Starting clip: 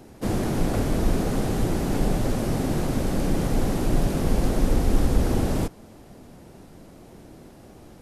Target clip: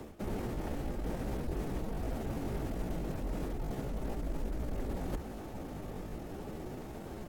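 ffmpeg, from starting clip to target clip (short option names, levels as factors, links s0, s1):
-filter_complex "[0:a]alimiter=limit=0.168:level=0:latency=1:release=14,highshelf=f=2500:g=-5,asplit=2[s0][s1];[s1]adelay=1574,volume=0.0355,highshelf=f=4000:g=-35.4[s2];[s0][s2]amix=inputs=2:normalize=0,areverse,acompressor=threshold=0.0158:ratio=20,areverse,afreqshift=-53,asetrate=58866,aresample=44100,atempo=0.749154,bandreject=f=1000:w=9,atempo=1.1,volume=1.58"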